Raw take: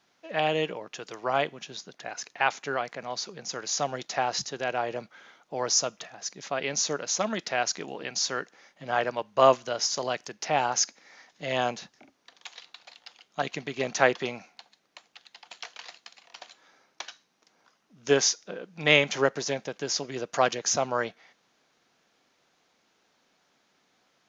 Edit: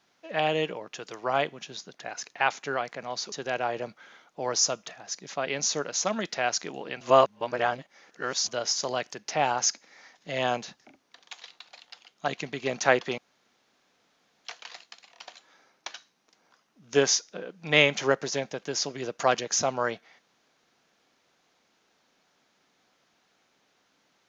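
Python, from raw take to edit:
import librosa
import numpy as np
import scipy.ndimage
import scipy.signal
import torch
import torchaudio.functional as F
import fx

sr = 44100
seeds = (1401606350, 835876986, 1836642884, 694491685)

y = fx.edit(x, sr, fx.cut(start_s=3.32, length_s=1.14),
    fx.reverse_span(start_s=8.15, length_s=1.47),
    fx.room_tone_fill(start_s=14.32, length_s=1.27), tone=tone)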